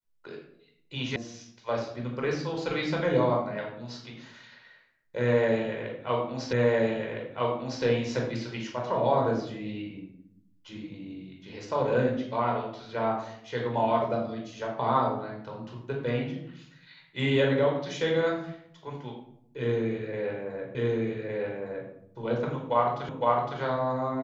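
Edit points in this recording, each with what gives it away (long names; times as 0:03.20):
0:01.16: cut off before it has died away
0:06.53: the same again, the last 1.31 s
0:20.75: the same again, the last 1.16 s
0:23.09: the same again, the last 0.51 s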